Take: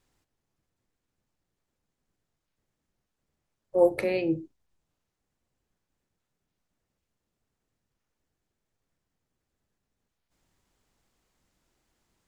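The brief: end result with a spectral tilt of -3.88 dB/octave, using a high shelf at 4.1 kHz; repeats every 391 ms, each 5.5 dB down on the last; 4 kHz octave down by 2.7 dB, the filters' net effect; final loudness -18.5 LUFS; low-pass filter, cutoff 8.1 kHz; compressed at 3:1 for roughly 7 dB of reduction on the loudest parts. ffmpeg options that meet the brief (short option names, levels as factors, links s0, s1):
-af "lowpass=8100,equalizer=f=4000:t=o:g=-7,highshelf=f=4100:g=6.5,acompressor=threshold=0.0631:ratio=3,aecho=1:1:391|782|1173|1564|1955|2346|2737:0.531|0.281|0.149|0.079|0.0419|0.0222|0.0118,volume=4.73"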